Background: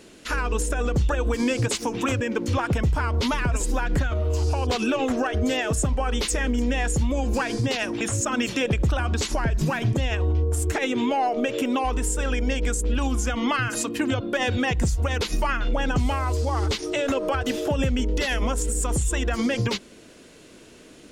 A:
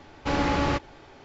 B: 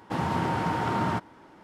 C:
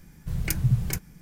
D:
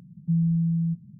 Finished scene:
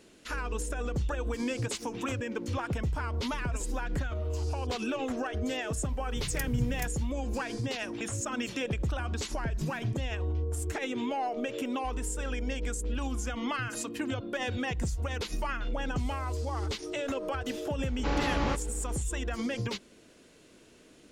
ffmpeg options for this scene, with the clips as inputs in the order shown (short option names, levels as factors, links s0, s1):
-filter_complex "[0:a]volume=0.355[s0];[3:a]atrim=end=1.21,asetpts=PTS-STARTPTS,volume=0.355,afade=t=in:d=0.004:c=hsin,afade=t=out:st=1.206:d=0.004:c=hsin,adelay=259749S[s1];[1:a]atrim=end=1.24,asetpts=PTS-STARTPTS,volume=0.501,afade=t=in:d=0.004:c=hsin,afade=t=out:st=1.236:d=0.004:c=hsin,adelay=17780[s2];[s0][s1][s2]amix=inputs=3:normalize=0"